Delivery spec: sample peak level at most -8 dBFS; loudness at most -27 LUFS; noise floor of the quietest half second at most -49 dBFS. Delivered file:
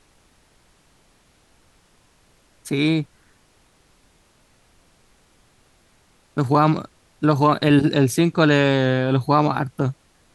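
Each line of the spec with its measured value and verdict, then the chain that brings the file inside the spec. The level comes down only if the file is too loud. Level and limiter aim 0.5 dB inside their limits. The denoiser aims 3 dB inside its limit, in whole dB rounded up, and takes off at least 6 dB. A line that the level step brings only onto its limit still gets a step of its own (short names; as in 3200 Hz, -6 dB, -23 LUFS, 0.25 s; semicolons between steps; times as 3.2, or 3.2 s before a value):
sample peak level -4.5 dBFS: fail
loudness -19.5 LUFS: fail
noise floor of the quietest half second -58 dBFS: OK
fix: gain -8 dB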